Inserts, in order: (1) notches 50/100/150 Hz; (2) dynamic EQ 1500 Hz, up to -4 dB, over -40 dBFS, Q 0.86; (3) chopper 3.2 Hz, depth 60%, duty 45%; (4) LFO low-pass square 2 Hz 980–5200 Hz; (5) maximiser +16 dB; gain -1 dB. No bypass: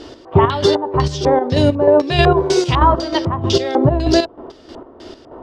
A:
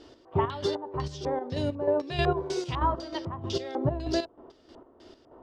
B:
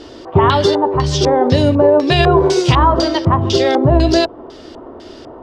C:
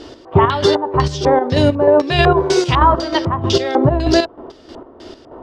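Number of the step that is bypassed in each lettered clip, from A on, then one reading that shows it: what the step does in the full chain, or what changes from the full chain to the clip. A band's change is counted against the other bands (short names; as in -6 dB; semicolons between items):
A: 5, crest factor change +4.0 dB; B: 3, momentary loudness spread change -1 LU; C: 2, 2 kHz band +2.5 dB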